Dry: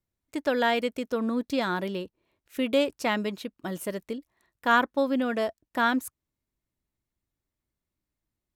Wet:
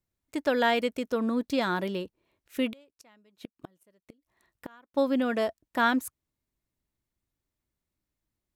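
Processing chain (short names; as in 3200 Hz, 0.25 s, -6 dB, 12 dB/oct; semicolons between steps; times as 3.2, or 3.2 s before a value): 2.7–4.94 flipped gate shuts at -26 dBFS, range -33 dB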